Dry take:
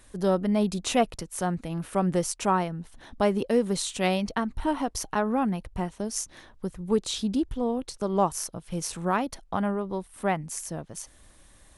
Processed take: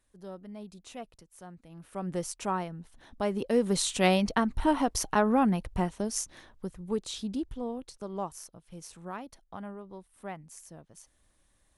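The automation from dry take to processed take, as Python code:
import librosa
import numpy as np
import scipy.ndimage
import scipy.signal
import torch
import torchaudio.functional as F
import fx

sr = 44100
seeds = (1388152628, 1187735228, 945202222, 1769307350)

y = fx.gain(x, sr, db=fx.line((1.61, -19.5), (2.19, -7.0), (3.23, -7.0), (3.83, 1.5), (5.79, 1.5), (6.95, -7.0), (7.53, -7.0), (8.58, -14.0)))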